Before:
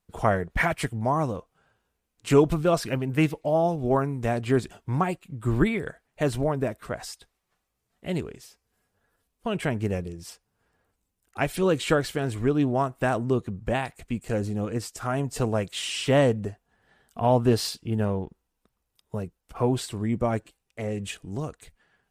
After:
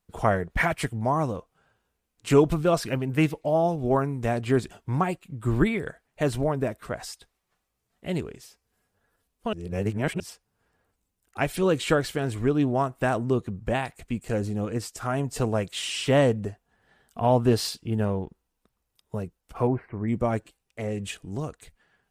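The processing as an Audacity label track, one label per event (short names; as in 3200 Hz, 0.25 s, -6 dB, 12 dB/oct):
9.530000	10.200000	reverse
19.670000	20.080000	elliptic low-pass 2200 Hz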